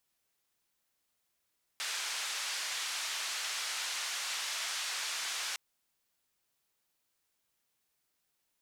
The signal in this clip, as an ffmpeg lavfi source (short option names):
-f lavfi -i "anoisesrc=c=white:d=3.76:r=44100:seed=1,highpass=f=1100,lowpass=f=6200,volume=-26dB"